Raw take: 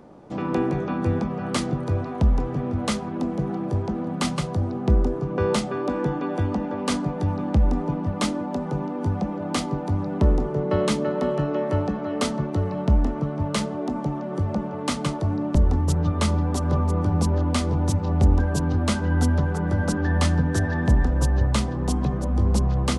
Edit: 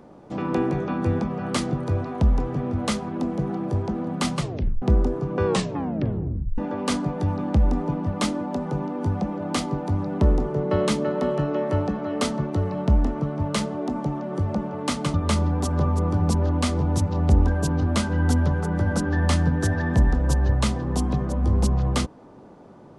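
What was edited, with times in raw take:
0:04.40: tape stop 0.42 s
0:05.46: tape stop 1.12 s
0:15.14–0:16.06: remove

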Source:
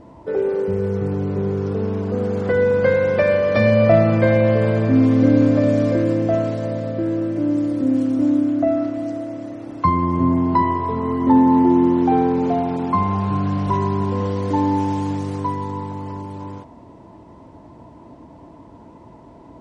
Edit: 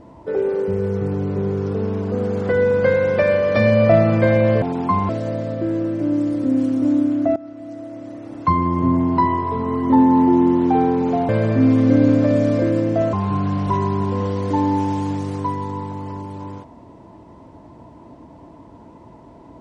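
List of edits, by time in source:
0:04.62–0:06.46: swap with 0:12.66–0:13.13
0:08.73–0:09.80: fade in, from −18.5 dB

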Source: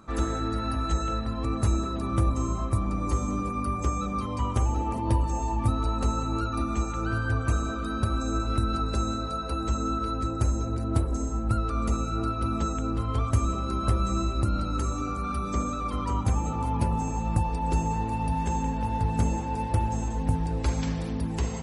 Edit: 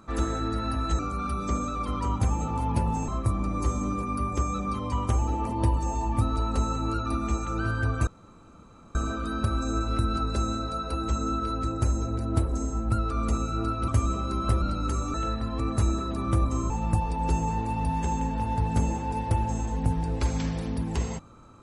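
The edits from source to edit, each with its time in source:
0:00.99–0:02.55: swap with 0:15.04–0:17.13
0:07.54: splice in room tone 0.88 s
0:12.47–0:13.27: remove
0:14.01–0:14.52: remove

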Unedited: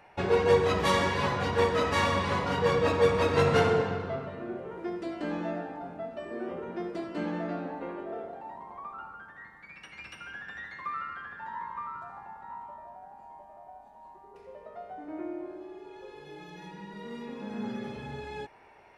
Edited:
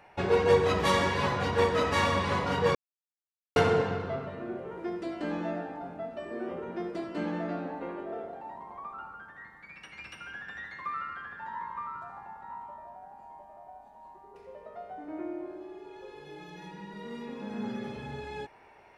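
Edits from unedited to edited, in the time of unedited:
0:02.75–0:03.56: silence

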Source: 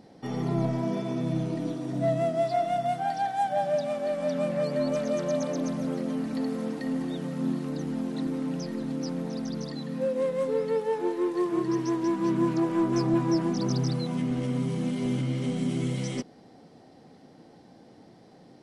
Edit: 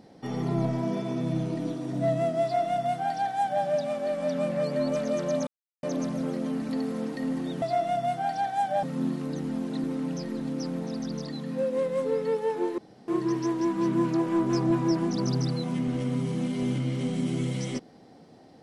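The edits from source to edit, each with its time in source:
0:02.43–0:03.64: duplicate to 0:07.26
0:05.47: splice in silence 0.36 s
0:11.21–0:11.51: fill with room tone

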